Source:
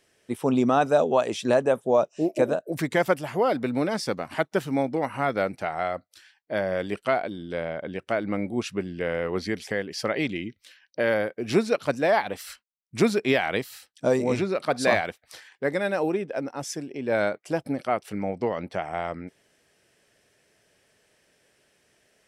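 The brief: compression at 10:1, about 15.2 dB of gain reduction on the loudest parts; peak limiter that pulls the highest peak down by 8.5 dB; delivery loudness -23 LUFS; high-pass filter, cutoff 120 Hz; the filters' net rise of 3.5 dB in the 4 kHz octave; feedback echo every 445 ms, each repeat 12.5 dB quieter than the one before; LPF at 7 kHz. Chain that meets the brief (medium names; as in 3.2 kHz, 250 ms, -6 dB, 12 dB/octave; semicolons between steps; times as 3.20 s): high-pass 120 Hz; low-pass 7 kHz; peaking EQ 4 kHz +5 dB; compression 10:1, threshold -31 dBFS; peak limiter -25.5 dBFS; feedback delay 445 ms, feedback 24%, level -12.5 dB; trim +15 dB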